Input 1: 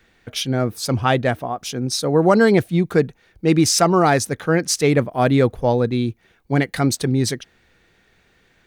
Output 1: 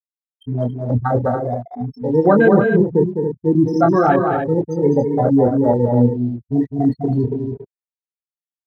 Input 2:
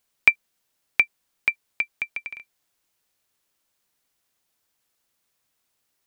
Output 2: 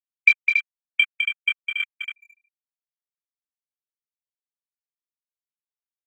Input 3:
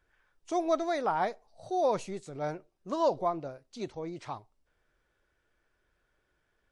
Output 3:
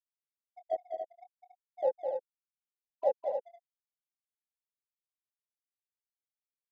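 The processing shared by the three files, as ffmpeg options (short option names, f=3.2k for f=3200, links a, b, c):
-filter_complex "[0:a]bandreject=f=161.2:t=h:w=4,bandreject=f=322.4:t=h:w=4,bandreject=f=483.6:t=h:w=4,bandreject=f=644.8:t=h:w=4,bandreject=f=806:t=h:w=4,bandreject=f=967.2:t=h:w=4,bandreject=f=1.1284k:t=h:w=4,bandreject=f=1.2896k:t=h:w=4,bandreject=f=1.4508k:t=h:w=4,bandreject=f=1.612k:t=h:w=4,afftfilt=real='re*gte(hypot(re,im),0.501)':imag='im*gte(hypot(re,im),0.501)':win_size=1024:overlap=0.75,asplit=2[a][b];[b]adelay=25,volume=-4.5dB[c];[a][c]amix=inputs=2:normalize=0,asplit=2[d][e];[e]acrusher=bits=4:mix=0:aa=0.5,volume=-8dB[f];[d][f]amix=inputs=2:normalize=0,afwtdn=0.0891,asplit=2[g][h];[h]aecho=0:1:207|279.9:0.501|0.447[i];[g][i]amix=inputs=2:normalize=0,volume=-2dB"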